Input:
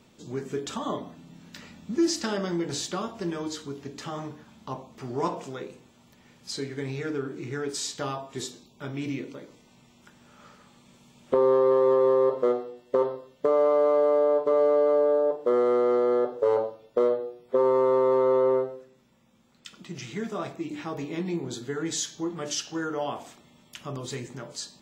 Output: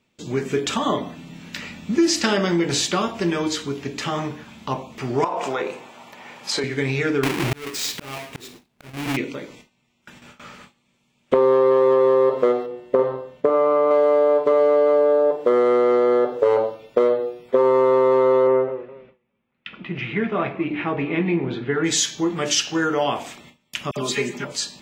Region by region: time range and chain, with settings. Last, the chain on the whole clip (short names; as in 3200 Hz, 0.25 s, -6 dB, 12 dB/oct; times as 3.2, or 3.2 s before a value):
5.24–6.64 HPF 280 Hz 6 dB/oct + bell 830 Hz +13 dB 1.8 oct + compressor 16:1, threshold -29 dBFS
7.23–9.17 half-waves squared off + auto swell 0.681 s
12.66–13.91 high shelf 2100 Hz -11 dB + flutter echo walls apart 8 m, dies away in 0.37 s
18.47–21.84 LPF 2800 Hz 24 dB/oct + warbling echo 0.205 s, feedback 35%, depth 129 cents, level -20.5 dB
23.91–24.45 HPF 150 Hz + comb 4.9 ms, depth 72% + dispersion lows, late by 54 ms, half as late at 1800 Hz
whole clip: gate with hold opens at -44 dBFS; compressor 2.5:1, threshold -24 dBFS; bell 2400 Hz +8 dB 0.89 oct; gain +9 dB